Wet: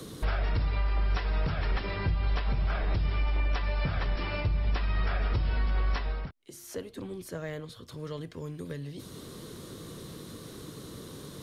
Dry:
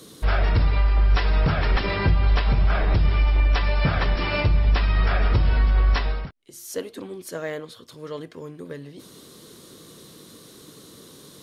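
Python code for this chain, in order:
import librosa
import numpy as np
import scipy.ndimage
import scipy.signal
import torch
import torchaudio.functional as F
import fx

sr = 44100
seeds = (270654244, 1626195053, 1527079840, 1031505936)

y = fx.band_squash(x, sr, depth_pct=70)
y = y * 10.0 ** (-9.0 / 20.0)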